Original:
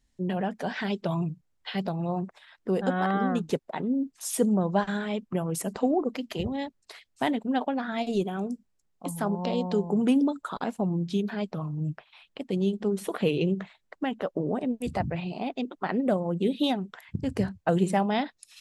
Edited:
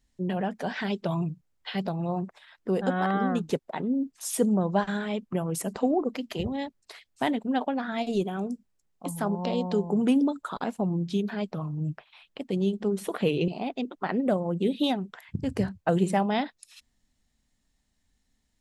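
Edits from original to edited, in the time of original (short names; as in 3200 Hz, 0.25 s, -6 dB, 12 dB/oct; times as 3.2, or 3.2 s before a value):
13.48–15.28 cut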